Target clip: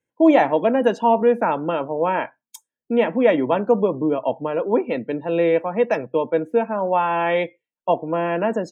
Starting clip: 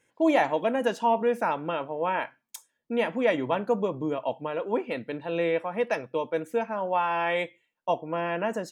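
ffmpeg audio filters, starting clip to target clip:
ffmpeg -i in.wav -filter_complex "[0:a]afftdn=noise_reduction=20:noise_floor=-46,tiltshelf=frequency=680:gain=4.5,acrossover=split=180[link_01][link_02];[link_01]acompressor=threshold=-49dB:ratio=6[link_03];[link_03][link_02]amix=inputs=2:normalize=0,volume=7dB" out.wav

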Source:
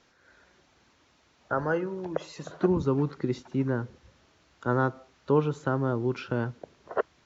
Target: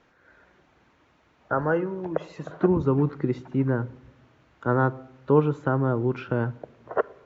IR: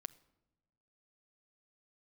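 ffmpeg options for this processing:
-filter_complex "[0:a]asplit=2[link_01][link_02];[1:a]atrim=start_sample=2205,lowpass=2800[link_03];[link_02][link_03]afir=irnorm=-1:irlink=0,volume=11dB[link_04];[link_01][link_04]amix=inputs=2:normalize=0,volume=-6.5dB"

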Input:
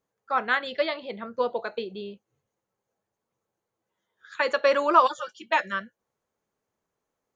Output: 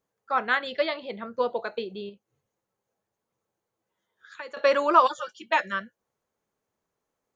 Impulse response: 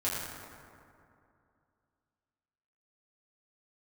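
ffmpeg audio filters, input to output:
-filter_complex "[0:a]asettb=1/sr,asplit=3[link_01][link_02][link_03];[link_01]atrim=end=2.094[link_04];[link_02]atrim=start=2.09:end=4.57,asetpts=PTS-STARTPTS,afade=type=in:duration=0.004:curve=qsin,afade=type=out:start_time=2.476:duration=0.004:curve=qsin,acompressor=threshold=-48dB:ratio=2[link_05];[link_03]atrim=start=4.566[link_06];[link_04][link_05]acrossfade=duration=0.004:curve1=hsin:curve2=qsin[link_07];[link_07][link_06]acrossfade=duration=0.004:curve1=qsin:curve2=hsin"

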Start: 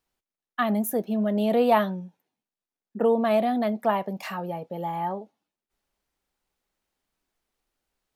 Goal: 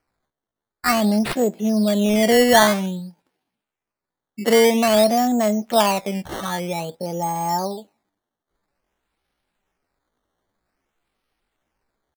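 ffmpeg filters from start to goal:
ffmpeg -i in.wav -af "acrusher=samples=12:mix=1:aa=0.000001:lfo=1:lforange=12:lforate=0.76,atempo=0.67,volume=6dB" out.wav

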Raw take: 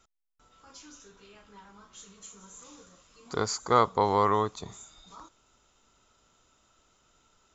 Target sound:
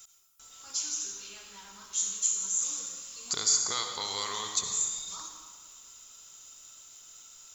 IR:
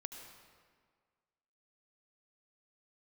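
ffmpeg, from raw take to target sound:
-filter_complex "[0:a]highshelf=frequency=6200:gain=12,acrossover=split=2200[link_01][link_02];[link_01]acompressor=threshold=-38dB:ratio=6[link_03];[link_02]alimiter=level_in=3dB:limit=-24dB:level=0:latency=1:release=444,volume=-3dB[link_04];[link_03][link_04]amix=inputs=2:normalize=0,crystalizer=i=9:c=0[link_05];[1:a]atrim=start_sample=2205,asetrate=48510,aresample=44100[link_06];[link_05][link_06]afir=irnorm=-1:irlink=0" -ar 48000 -c:a libopus -b:a 96k

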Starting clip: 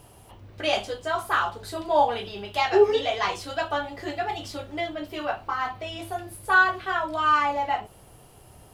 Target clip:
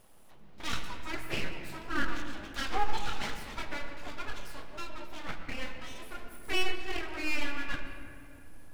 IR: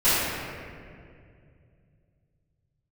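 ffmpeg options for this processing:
-filter_complex "[0:a]aeval=exprs='abs(val(0))':channel_layout=same,asplit=2[link_01][link_02];[link_02]bass=frequency=250:gain=2,treble=frequency=4000:gain=-5[link_03];[1:a]atrim=start_sample=2205,adelay=90[link_04];[link_03][link_04]afir=irnorm=-1:irlink=0,volume=-25.5dB[link_05];[link_01][link_05]amix=inputs=2:normalize=0,volume=-8dB"

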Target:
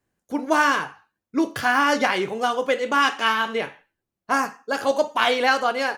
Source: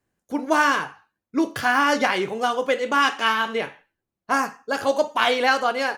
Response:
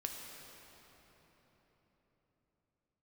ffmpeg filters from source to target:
-filter_complex "[0:a]asettb=1/sr,asplit=3[link_01][link_02][link_03];[link_01]atrim=end=4.454[link_04];[link_02]atrim=start=4.45:end=4.91,asetpts=PTS-STARTPTS,afade=type=in:duration=0.004:curve=qsin,afade=type=out:start_time=0.456:duration=0.004:curve=qsin,highpass=140[link_05];[link_03]atrim=start=4.906[link_06];[link_04][link_05]acrossfade=duration=0.004:curve1=hsin:curve2=qsin[link_07];[link_07][link_06]acrossfade=duration=0.004:curve1=qsin:curve2=hsin"

